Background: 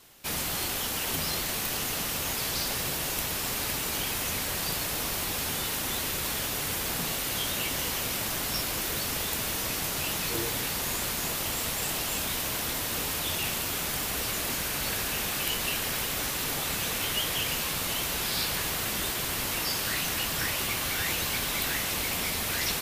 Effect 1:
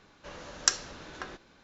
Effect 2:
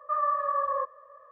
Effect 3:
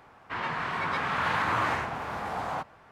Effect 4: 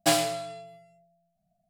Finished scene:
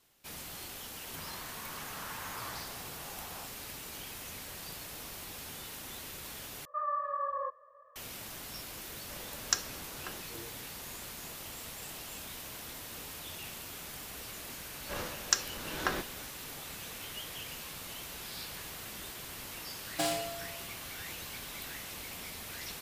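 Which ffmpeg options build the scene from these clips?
-filter_complex "[1:a]asplit=2[s0][s1];[0:a]volume=0.211[s2];[s1]dynaudnorm=f=170:g=3:m=5.01[s3];[4:a]alimiter=limit=0.237:level=0:latency=1:release=47[s4];[s2]asplit=2[s5][s6];[s5]atrim=end=6.654[s7];[2:a]atrim=end=1.31,asetpts=PTS-STARTPTS,volume=0.447[s8];[s6]atrim=start=7.956[s9];[3:a]atrim=end=2.91,asetpts=PTS-STARTPTS,volume=0.141,afade=t=in:d=0.004:c=hsin,afade=t=out:st=2.906:d=0.004:c=hsin,adelay=840[s10];[s0]atrim=end=1.63,asetpts=PTS-STARTPTS,volume=0.562,afade=t=in:d=0.004:c=hsin,afade=t=out:st=1.626:d=0.004:c=hsin,adelay=8850[s11];[s3]atrim=end=1.63,asetpts=PTS-STARTPTS,volume=0.562,afade=t=in:d=0.004:c=hsin,afade=t=out:st=1.626:d=0.004:c=hsin,adelay=14650[s12];[s4]atrim=end=1.69,asetpts=PTS-STARTPTS,volume=0.422,afade=t=in:d=0.004:c=hsin,afade=t=out:st=1.686:d=0.004:c=hsin,adelay=19930[s13];[s7][s8]acrossfade=d=0.004:c1=hsin:c2=hsin[s14];[s14][s9]acrossfade=d=0.004:c1=hsin:c2=hsin[s15];[s15][s10][s11][s12][s13]amix=inputs=5:normalize=0"

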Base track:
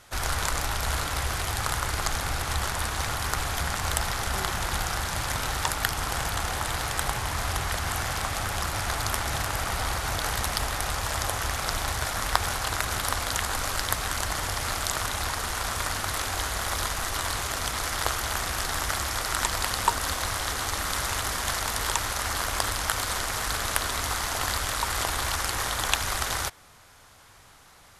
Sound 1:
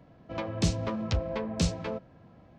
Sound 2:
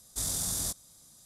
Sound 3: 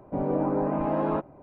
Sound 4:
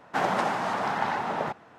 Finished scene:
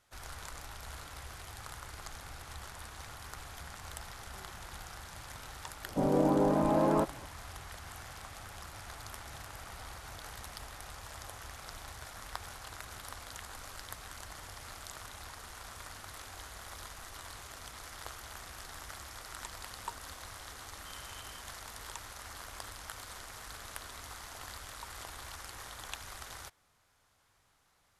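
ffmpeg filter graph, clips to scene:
-filter_complex "[0:a]volume=0.126[s0];[2:a]lowpass=f=2700:t=q:w=0.5098,lowpass=f=2700:t=q:w=0.6013,lowpass=f=2700:t=q:w=0.9,lowpass=f=2700:t=q:w=2.563,afreqshift=-3200[s1];[3:a]atrim=end=1.42,asetpts=PTS-STARTPTS,volume=0.891,afade=t=in:d=0.004:c=hsin,afade=t=out:st=1.416:d=0.004:c=hsin,adelay=5840[s2];[s1]atrim=end=1.25,asetpts=PTS-STARTPTS,volume=0.168,afade=t=in:d=0.004:c=hsin,afade=t=out:st=1.246:d=0.004:c=hsin,adelay=911988S[s3];[s0][s2][s3]amix=inputs=3:normalize=0"

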